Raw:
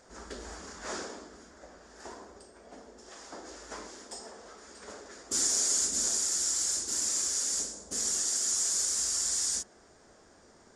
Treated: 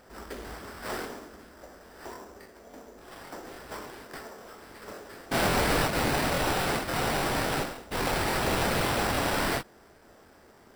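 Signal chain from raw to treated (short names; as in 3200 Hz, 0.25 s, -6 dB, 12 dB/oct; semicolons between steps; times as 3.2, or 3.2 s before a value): sample-rate reducer 6600 Hz, jitter 0%; crackling interface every 0.28 s, samples 1024, repeat, from 0.45; ending taper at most 460 dB/s; gain +3 dB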